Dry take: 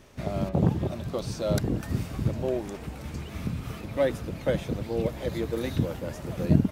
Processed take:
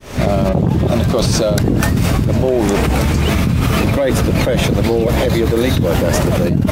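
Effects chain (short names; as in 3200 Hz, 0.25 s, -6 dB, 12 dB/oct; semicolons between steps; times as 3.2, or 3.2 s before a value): opening faded in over 0.79 s; fast leveller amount 100%; gain +2.5 dB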